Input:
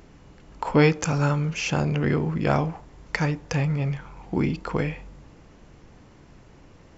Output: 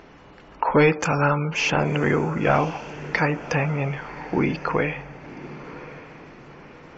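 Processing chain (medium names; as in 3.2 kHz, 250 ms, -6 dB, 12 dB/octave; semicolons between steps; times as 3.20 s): overdrive pedal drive 16 dB, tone 2.3 kHz, clips at -6 dBFS; spectral gate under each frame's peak -30 dB strong; echo that smears into a reverb 1070 ms, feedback 41%, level -15 dB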